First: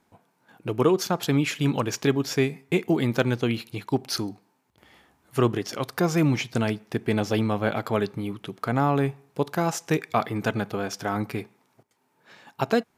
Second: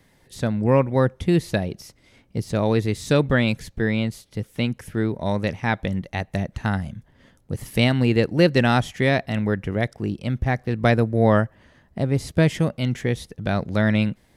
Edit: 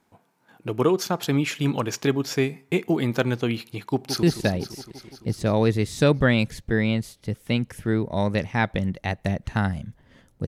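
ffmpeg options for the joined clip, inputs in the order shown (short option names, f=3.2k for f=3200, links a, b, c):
-filter_complex "[0:a]apad=whole_dur=10.47,atrim=end=10.47,atrim=end=4.232[a];[1:a]atrim=start=1.318:end=7.56[b];[a][b]acrossfade=d=0.004:c1=hsin:c2=hsin,asplit=2[c][d];[d]afade=t=in:st=3.91:d=0.01,afade=t=out:st=4.23:d=0.01,aecho=0:1:170|340|510|680|850|1020|1190|1360|1530|1700|1870|2040:0.375837|0.281878|0.211409|0.158556|0.118917|0.089188|0.066891|0.0501682|0.0376262|0.0282196|0.0211647|0.0158735[e];[c][e]amix=inputs=2:normalize=0"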